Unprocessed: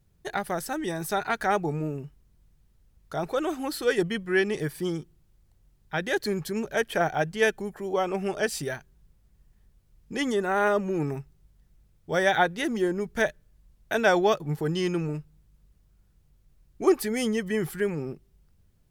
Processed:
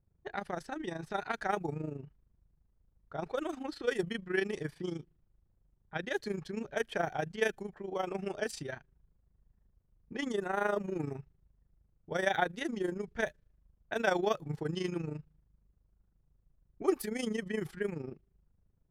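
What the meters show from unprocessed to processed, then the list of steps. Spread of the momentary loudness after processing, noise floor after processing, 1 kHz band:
10 LU, -74 dBFS, -8.5 dB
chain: low-pass opened by the level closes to 1200 Hz, open at -21.5 dBFS; AM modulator 26 Hz, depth 60%; gain -5 dB

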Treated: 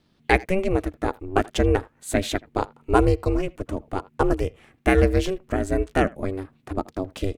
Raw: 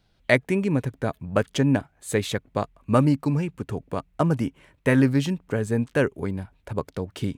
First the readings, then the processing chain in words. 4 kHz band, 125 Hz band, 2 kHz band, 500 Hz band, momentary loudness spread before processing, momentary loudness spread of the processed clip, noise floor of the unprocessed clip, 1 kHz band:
+1.0 dB, -2.5 dB, +0.5 dB, +2.5 dB, 11 LU, 11 LU, -65 dBFS, +5.5 dB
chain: speakerphone echo 80 ms, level -22 dB; ring modulator 190 Hz; gain +4 dB

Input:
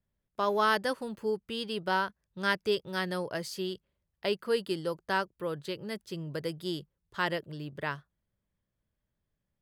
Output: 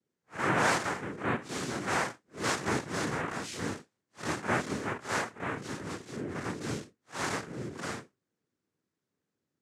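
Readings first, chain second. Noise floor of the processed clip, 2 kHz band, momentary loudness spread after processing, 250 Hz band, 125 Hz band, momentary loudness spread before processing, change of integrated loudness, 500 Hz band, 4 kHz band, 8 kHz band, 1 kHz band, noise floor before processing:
under -85 dBFS, +1.0 dB, 10 LU, +1.0 dB, +3.0 dB, 10 LU, -0.5 dB, -4.5 dB, -3.5 dB, +11.5 dB, -0.5 dB, -84 dBFS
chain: time blur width 0.11 s; noise vocoder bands 3; gain +2 dB

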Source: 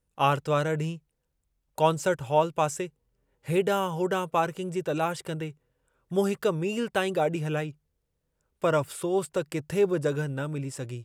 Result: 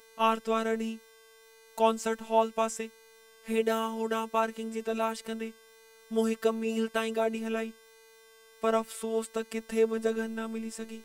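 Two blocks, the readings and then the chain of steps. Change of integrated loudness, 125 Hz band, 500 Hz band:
-3.0 dB, under -15 dB, -2.5 dB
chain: buzz 400 Hz, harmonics 39, -54 dBFS -4 dB/oct; vibrato 1.4 Hz 19 cents; robotiser 224 Hz

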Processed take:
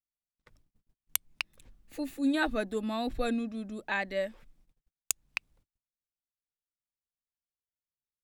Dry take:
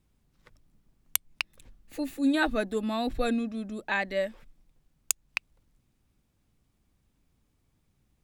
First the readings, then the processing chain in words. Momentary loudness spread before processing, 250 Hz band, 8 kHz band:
10 LU, -3.0 dB, -3.0 dB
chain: gate -60 dBFS, range -37 dB; gain -3 dB

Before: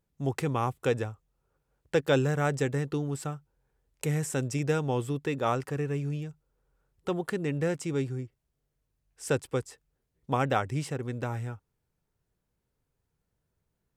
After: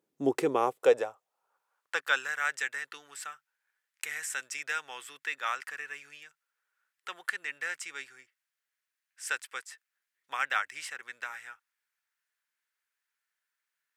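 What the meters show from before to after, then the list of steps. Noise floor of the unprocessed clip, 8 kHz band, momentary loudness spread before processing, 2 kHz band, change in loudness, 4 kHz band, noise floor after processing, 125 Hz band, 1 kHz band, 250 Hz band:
-81 dBFS, +0.5 dB, 11 LU, +6.0 dB, -2.5 dB, +1.5 dB, under -85 dBFS, under -25 dB, -1.5 dB, -9.5 dB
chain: high-pass sweep 320 Hz -> 1700 Hz, 0.27–2.33

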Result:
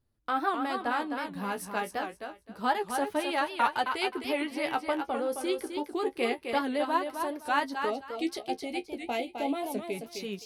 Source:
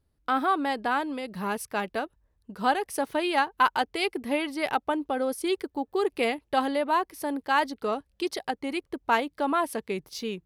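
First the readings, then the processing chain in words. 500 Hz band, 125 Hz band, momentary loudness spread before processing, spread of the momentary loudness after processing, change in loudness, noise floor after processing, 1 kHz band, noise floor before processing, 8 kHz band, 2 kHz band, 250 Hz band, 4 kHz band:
-3.0 dB, n/a, 8 LU, 7 LU, -3.5 dB, -58 dBFS, -3.5 dB, -73 dBFS, -3.0 dB, -3.5 dB, -3.0 dB, -3.0 dB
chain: flange 0.28 Hz, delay 8.1 ms, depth 9.3 ms, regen +33%; spectral gain 7.9–9.94, 880–2000 Hz -15 dB; thinning echo 0.26 s, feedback 22%, high-pass 190 Hz, level -6 dB; record warp 78 rpm, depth 160 cents

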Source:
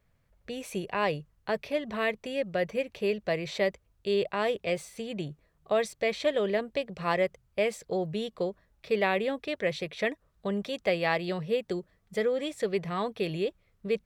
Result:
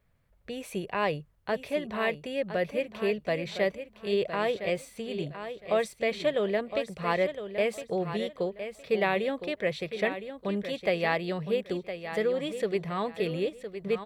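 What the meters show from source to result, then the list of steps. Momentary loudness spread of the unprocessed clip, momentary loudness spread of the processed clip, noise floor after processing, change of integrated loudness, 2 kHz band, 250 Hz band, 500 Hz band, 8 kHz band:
9 LU, 7 LU, -62 dBFS, 0.0 dB, 0.0 dB, +0.5 dB, +0.5 dB, -2.5 dB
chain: bell 6000 Hz -4.5 dB 0.82 oct; on a send: feedback echo 1.012 s, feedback 23%, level -10 dB

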